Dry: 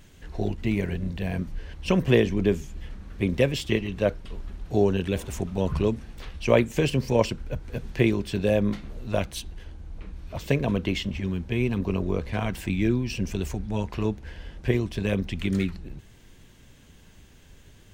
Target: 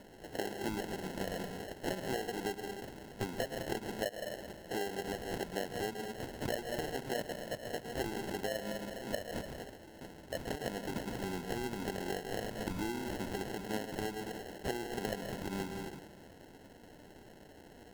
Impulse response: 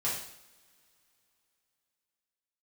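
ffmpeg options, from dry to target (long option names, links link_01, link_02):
-filter_complex "[0:a]highpass=380,asplit=2[link_01][link_02];[1:a]atrim=start_sample=2205,adelay=103[link_03];[link_02][link_03]afir=irnorm=-1:irlink=0,volume=-13.5dB[link_04];[link_01][link_04]amix=inputs=2:normalize=0,acompressor=threshold=-38dB:ratio=12,acrusher=samples=37:mix=1:aa=0.000001,volume=4dB"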